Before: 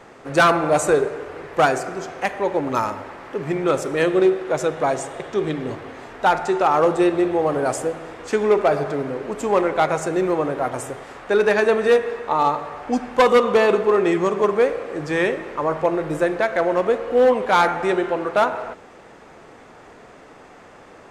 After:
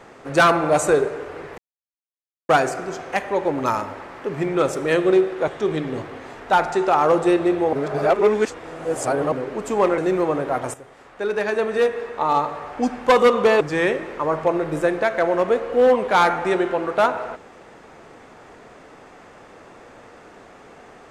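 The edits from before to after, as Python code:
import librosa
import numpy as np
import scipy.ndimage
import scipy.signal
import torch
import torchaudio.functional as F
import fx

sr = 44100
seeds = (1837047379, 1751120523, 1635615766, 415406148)

y = fx.edit(x, sr, fx.insert_silence(at_s=1.58, length_s=0.91),
    fx.cut(start_s=4.57, length_s=0.64),
    fx.reverse_span(start_s=7.46, length_s=1.59),
    fx.cut(start_s=9.71, length_s=0.37),
    fx.fade_in_from(start_s=10.84, length_s=1.8, floor_db=-12.5),
    fx.cut(start_s=13.71, length_s=1.28), tone=tone)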